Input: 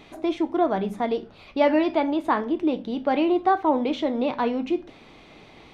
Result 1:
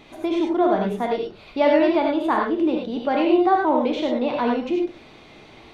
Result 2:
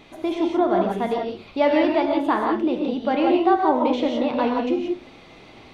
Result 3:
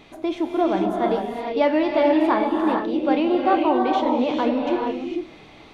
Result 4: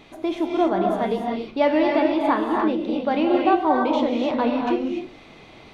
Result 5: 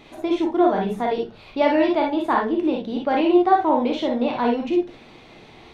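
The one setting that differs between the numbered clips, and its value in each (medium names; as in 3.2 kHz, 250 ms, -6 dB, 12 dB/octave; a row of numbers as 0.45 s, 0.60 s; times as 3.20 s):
gated-style reverb, gate: 120 ms, 200 ms, 480 ms, 320 ms, 80 ms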